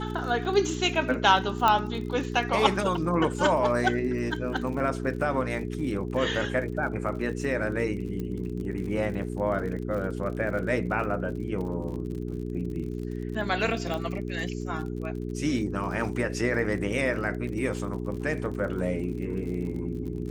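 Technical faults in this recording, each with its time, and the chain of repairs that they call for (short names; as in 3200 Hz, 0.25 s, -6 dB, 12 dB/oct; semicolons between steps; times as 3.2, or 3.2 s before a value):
crackle 46/s -36 dBFS
hum 60 Hz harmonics 7 -33 dBFS
1.68 pop -9 dBFS
8.2 pop -23 dBFS
13.94 pop -19 dBFS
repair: de-click; de-hum 60 Hz, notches 7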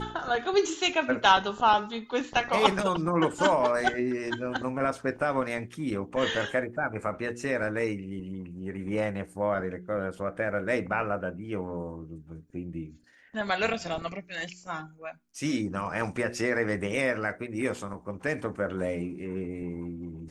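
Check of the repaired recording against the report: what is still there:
1.68 pop
13.94 pop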